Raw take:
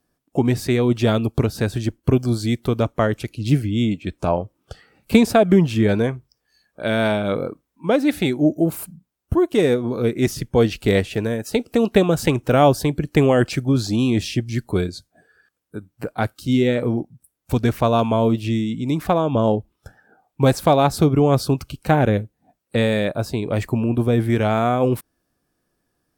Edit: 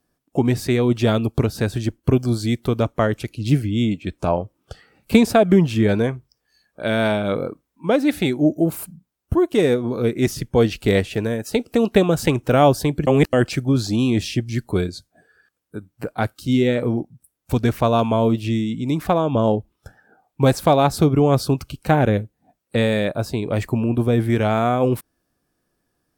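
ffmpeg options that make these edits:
-filter_complex "[0:a]asplit=3[a][b][c];[a]atrim=end=13.072[d];[b]atrim=start=13.068:end=13.332,asetpts=PTS-STARTPTS,areverse[e];[c]atrim=start=13.328[f];[d][e]acrossfade=d=0.004:c1=hsin:c2=hsin[g];[g][f]acrossfade=d=0.004:c1=hsin:c2=hsin"

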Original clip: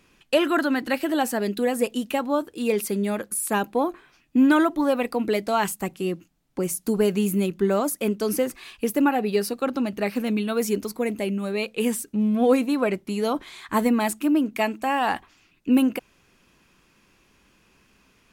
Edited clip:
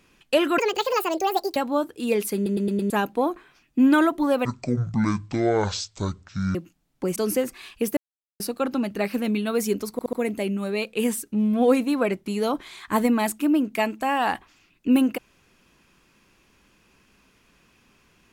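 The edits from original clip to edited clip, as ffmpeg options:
-filter_complex "[0:a]asplit=16[a][b][c][d][e][f][g][h][i][j][k][l][m][n][o][p];[a]atrim=end=0.584[q];[b]atrim=start=0.58:end=2.14,asetpts=PTS-STARTPTS,asetrate=70119,aresample=44100[r];[c]atrim=start=2.136:end=3.042[s];[d]atrim=start=2.928:end=3.042[t];[e]atrim=start=2.928:end=3.042[u];[f]atrim=start=2.928:end=3.042[v];[g]atrim=start=2.928:end=3.042[w];[h]atrim=start=3.478:end=5.034[x];[i]atrim=start=5.03:end=6.1,asetpts=PTS-STARTPTS,asetrate=22491,aresample=44100[y];[j]atrim=start=6.096:end=6.712[z];[k]atrim=start=8.178:end=8.99,asetpts=PTS-STARTPTS,afade=t=out:st=0.808:d=0.004:c=hsin[aa];[l]atrim=start=8.99:end=9.42,asetpts=PTS-STARTPTS,volume=0[ab];[m]atrim=start=9.42:end=11.012,asetpts=PTS-STARTPTS,afade=t=in:d=0.004:c=hsin[ac];[n]atrim=start=10.938:end=11.012[ad];[o]atrim=start=10.938:end=11.012[ae];[p]atrim=start=10.938[af];[q][r]acrossfade=d=0.004:c1=hsin:c2=hsin[ag];[ag][s]acrossfade=d=0.004:c1=hsin:c2=hsin[ah];[ah][t]acrossfade=d=0.004:c1=hsin:c2=hsin[ai];[ai][u]acrossfade=d=0.004:c1=hsin:c2=hsin[aj];[aj][v]acrossfade=d=0.004:c1=hsin:c2=hsin[ak];[ak][w]acrossfade=d=0.004:c1=hsin:c2=hsin[al];[al][x]acrossfade=d=0.004:c1=hsin:c2=hsin[am];[am][y]acrossfade=d=0.004:c1=hsin:c2=hsin[an];[an][z]acrossfade=d=0.004:c1=hsin:c2=hsin[ao];[aa][ab][ac]concat=n=3:v=0:a=1[ap];[ao][ap]acrossfade=d=0.004:c1=hsin:c2=hsin[aq];[aq][ad]acrossfade=d=0.004:c1=hsin:c2=hsin[ar];[ar][ae]acrossfade=d=0.004:c1=hsin:c2=hsin[as];[as][af]acrossfade=d=0.004:c1=hsin:c2=hsin"

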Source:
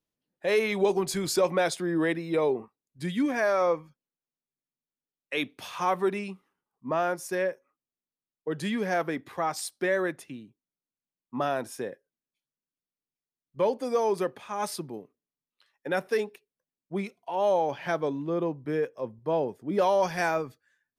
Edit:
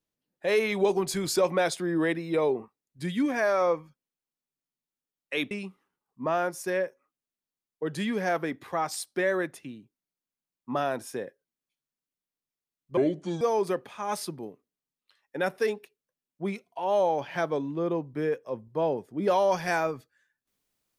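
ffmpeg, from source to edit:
-filter_complex "[0:a]asplit=4[a][b][c][d];[a]atrim=end=5.512[e];[b]atrim=start=6.158:end=13.624[f];[c]atrim=start=13.62:end=13.92,asetpts=PTS-STARTPTS,asetrate=29988,aresample=44100[g];[d]atrim=start=13.916[h];[e][f]acrossfade=d=0.004:c1=hsin:c2=hsin[i];[i][g]acrossfade=d=0.004:c1=hsin:c2=hsin[j];[j][h]acrossfade=d=0.004:c1=hsin:c2=hsin"

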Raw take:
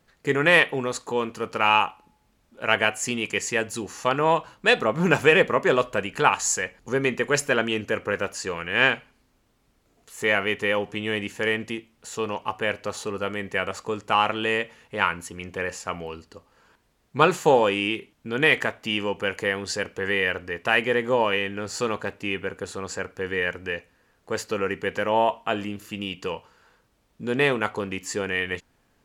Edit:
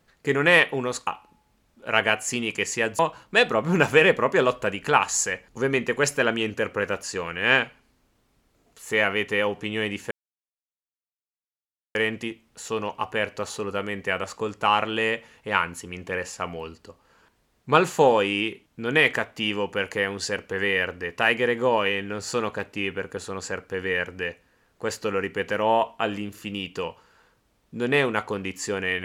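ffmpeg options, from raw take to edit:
-filter_complex "[0:a]asplit=4[a][b][c][d];[a]atrim=end=1.072[e];[b]atrim=start=1.818:end=3.742[f];[c]atrim=start=4.298:end=11.42,asetpts=PTS-STARTPTS,afade=t=out:st=7.118:d=0.004:c=hsin,apad=pad_dur=1.84[g];[d]atrim=start=11.42,asetpts=PTS-STARTPTS,afade=t=in:d=0.004:c=hsin[h];[e][f]acrossfade=d=0.004:c1=hsin:c2=hsin[i];[g][h]concat=n=2:v=0:a=1[j];[i][j]acrossfade=d=0.004:c1=hsin:c2=hsin"

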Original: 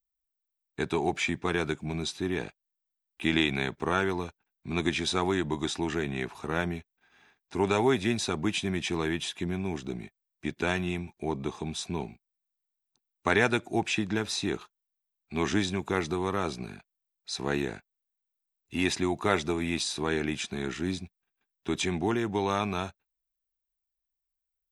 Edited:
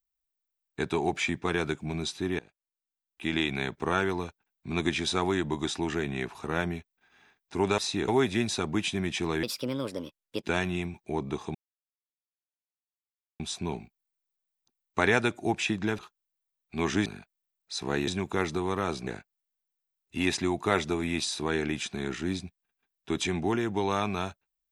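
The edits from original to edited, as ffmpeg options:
-filter_complex "[0:a]asplit=11[a][b][c][d][e][f][g][h][i][j][k];[a]atrim=end=2.39,asetpts=PTS-STARTPTS,afade=t=out:st=2.386:d=0.004:c=hsin:silence=0.0944061[l];[b]atrim=start=2.39:end=7.782,asetpts=PTS-STARTPTS,afade=t=in:d=1.46:silence=0.0944061[m];[c]atrim=start=14.268:end=14.572[n];[d]atrim=start=7.778:end=9.134[o];[e]atrim=start=9.13:end=10.57,asetpts=PTS-STARTPTS,asetrate=63063,aresample=44100,atrim=end_sample=44408,asetpts=PTS-STARTPTS[p];[f]atrim=start=10.566:end=11.68,asetpts=PTS-STARTPTS,afade=t=out:st=1.11:d=0.004:c=hsin,apad=pad_dur=1.85[q];[g]atrim=start=11.68:end=14.272,asetpts=PTS-STARTPTS,afade=t=in:d=0.004:c=hsin[r];[h]atrim=start=14.568:end=15.642[s];[i]atrim=start=16.628:end=17.652[t];[j]atrim=start=15.638:end=16.632[u];[k]atrim=start=17.648[v];[l][m]concat=n=2:v=0:a=1[w];[w][n]acrossfade=d=0.004:c1=hsin:c2=hsin[x];[x][o]acrossfade=d=0.004:c1=hsin:c2=hsin[y];[y][p]acrossfade=d=0.004:c1=hsin:c2=hsin[z];[q][r]concat=n=2:v=0:a=1[aa];[z][aa]acrossfade=d=0.004:c1=hsin:c2=hsin[ab];[ab][s]acrossfade=d=0.004:c1=hsin:c2=hsin[ac];[ac][t]acrossfade=d=0.004:c1=hsin:c2=hsin[ad];[ad][u]acrossfade=d=0.004:c1=hsin:c2=hsin[ae];[ae][v]acrossfade=d=0.004:c1=hsin:c2=hsin"

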